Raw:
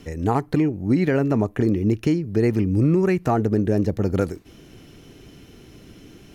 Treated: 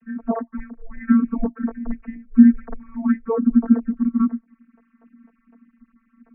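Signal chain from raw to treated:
three sine waves on the formant tracks
channel vocoder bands 32, saw 223 Hz
single-sideband voice off tune −210 Hz 310–2,100 Hz
level +3.5 dB

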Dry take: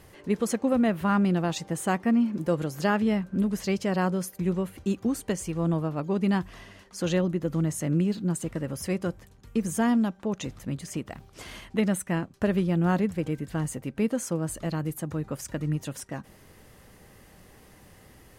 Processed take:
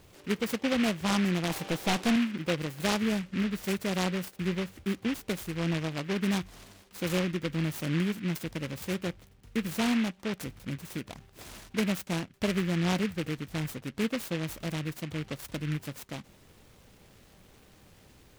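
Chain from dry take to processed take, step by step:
0:01.50–0:02.16: mid-hump overdrive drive 23 dB, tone 1,100 Hz, clips at −13.5 dBFS
short delay modulated by noise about 2,000 Hz, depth 0.16 ms
level −4 dB

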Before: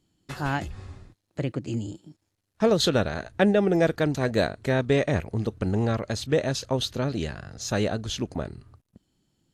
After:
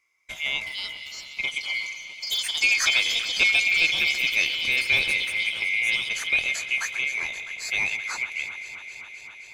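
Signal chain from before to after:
neighbouring bands swapped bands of 2,000 Hz
delay that swaps between a low-pass and a high-pass 131 ms, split 2,100 Hz, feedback 90%, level −12 dB
delay with pitch and tempo change per echo 457 ms, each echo +6 semitones, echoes 3, each echo −6 dB
level −1 dB

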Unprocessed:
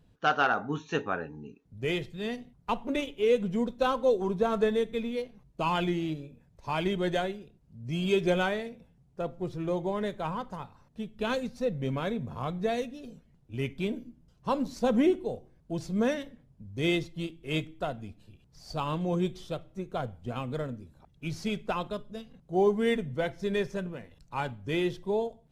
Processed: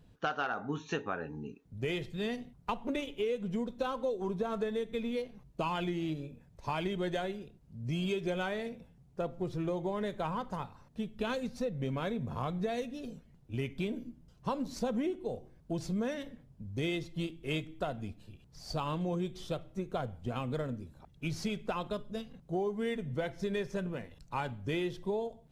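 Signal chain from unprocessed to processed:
downward compressor, threshold −33 dBFS, peak gain reduction 13 dB
level +2 dB

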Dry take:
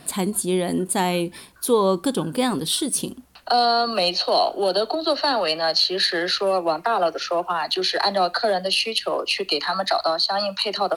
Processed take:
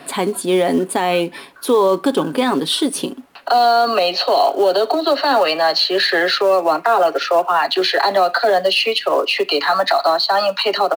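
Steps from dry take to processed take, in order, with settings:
three-way crossover with the lows and the highs turned down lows −19 dB, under 240 Hz, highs −13 dB, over 3,500 Hz
comb filter 7.2 ms, depth 37%
in parallel at −5.5 dB: floating-point word with a short mantissa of 2 bits
on the sum: boost into a limiter +11.5 dB
level −5.5 dB

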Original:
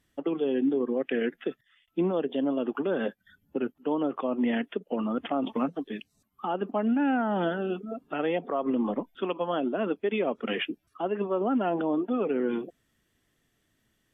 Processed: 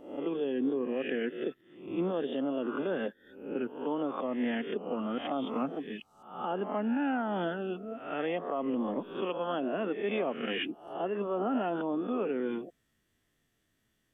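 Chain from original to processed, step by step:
peak hold with a rise ahead of every peak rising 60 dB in 0.61 s
level −5.5 dB

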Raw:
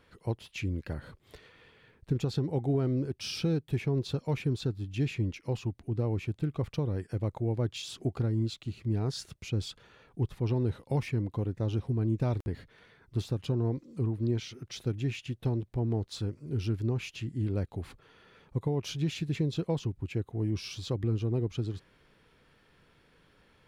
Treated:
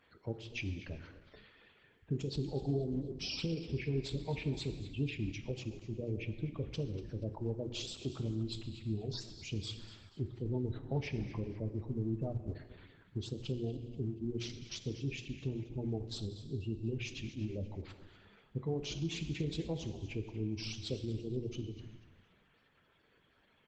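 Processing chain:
stylus tracing distortion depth 0.073 ms
gate on every frequency bin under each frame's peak −20 dB strong
high-pass filter 69 Hz 6 dB per octave
mains-hum notches 60/120/180/240/300/360/420/480/540 Hz
reverb reduction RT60 0.74 s
high-shelf EQ 2,200 Hz +5.5 dB
echo with shifted repeats 240 ms, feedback 37%, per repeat −100 Hz, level −14.5 dB
reverb whose tail is shaped and stops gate 490 ms falling, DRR 8 dB
level −4.5 dB
Opus 12 kbit/s 48,000 Hz

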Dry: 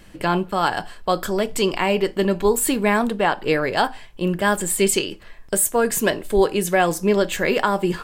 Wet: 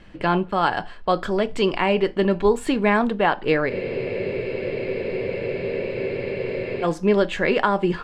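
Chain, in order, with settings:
low-pass filter 3,500 Hz 12 dB per octave
frozen spectrum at 0:03.71, 3.13 s

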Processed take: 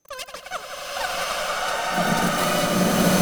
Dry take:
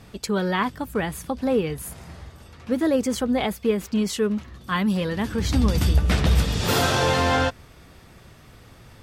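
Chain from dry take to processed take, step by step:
change of speed 2.81×
steady tone 6,200 Hz −40 dBFS
power curve on the samples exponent 2
echo machine with several playback heads 87 ms, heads first and second, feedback 68%, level −12.5 dB
slow-attack reverb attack 1,150 ms, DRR −9 dB

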